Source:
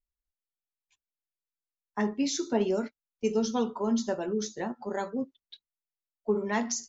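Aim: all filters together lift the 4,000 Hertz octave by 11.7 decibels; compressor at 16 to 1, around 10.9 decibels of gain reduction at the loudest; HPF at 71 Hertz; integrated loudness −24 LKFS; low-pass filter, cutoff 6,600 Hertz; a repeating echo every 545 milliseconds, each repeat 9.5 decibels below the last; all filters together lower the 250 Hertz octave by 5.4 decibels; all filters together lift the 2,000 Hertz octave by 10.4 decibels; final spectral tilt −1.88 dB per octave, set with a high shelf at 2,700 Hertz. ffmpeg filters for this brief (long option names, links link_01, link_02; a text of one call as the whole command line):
ffmpeg -i in.wav -af "highpass=71,lowpass=6600,equalizer=frequency=250:width_type=o:gain=-6.5,equalizer=frequency=2000:width_type=o:gain=7.5,highshelf=frequency=2700:gain=8.5,equalizer=frequency=4000:width_type=o:gain=6.5,acompressor=threshold=-30dB:ratio=16,aecho=1:1:545|1090|1635|2180:0.335|0.111|0.0365|0.012,volume=11.5dB" out.wav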